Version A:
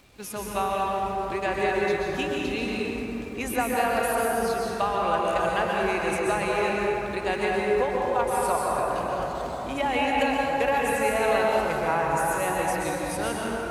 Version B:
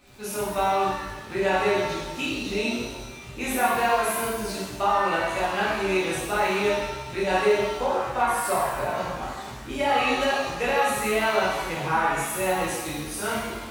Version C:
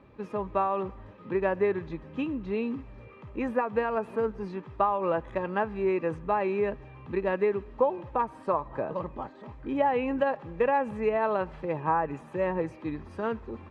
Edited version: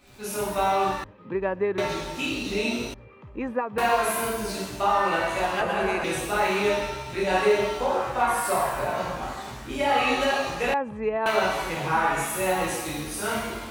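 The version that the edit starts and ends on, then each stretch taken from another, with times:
B
1.04–1.78 s: from C
2.94–3.78 s: from C
5.61–6.04 s: from A
10.74–11.26 s: from C

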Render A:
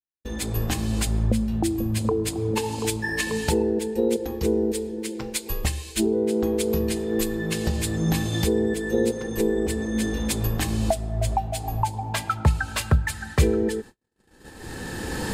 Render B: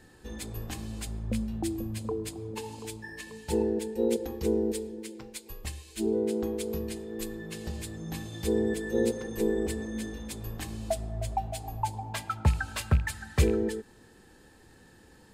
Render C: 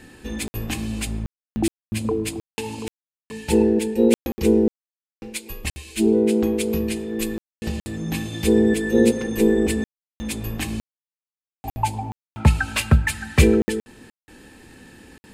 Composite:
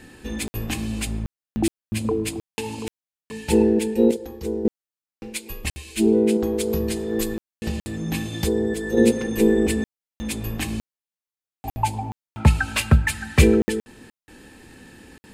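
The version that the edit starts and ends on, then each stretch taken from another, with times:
C
4.11–4.65 s: from B
6.37–7.34 s: from A
8.43–8.97 s: from A

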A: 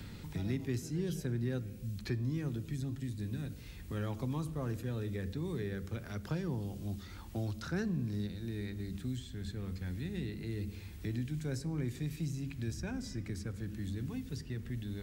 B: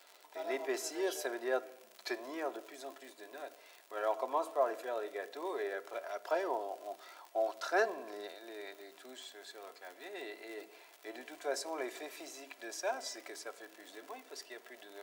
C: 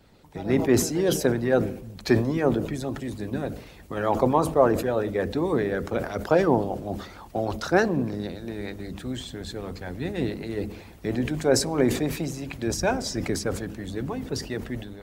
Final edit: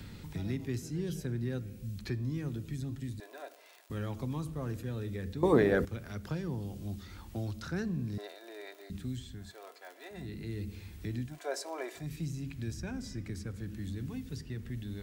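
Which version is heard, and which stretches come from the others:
A
3.20–3.90 s: from B
5.43–5.85 s: from C
8.18–8.90 s: from B
9.43–10.21 s: from B, crossfade 0.24 s
11.31–12.02 s: from B, crossfade 0.16 s

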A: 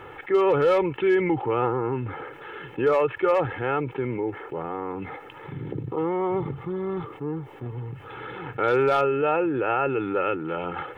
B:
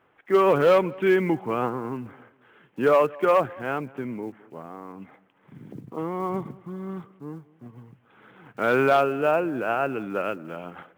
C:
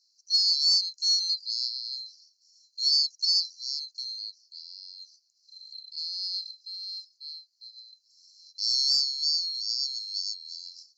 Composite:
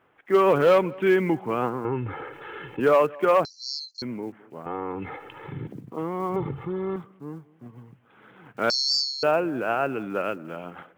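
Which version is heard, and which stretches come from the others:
B
1.85–2.80 s: from A
3.45–4.02 s: from C
4.66–5.67 s: from A
6.36–6.96 s: from A
8.70–9.23 s: from C

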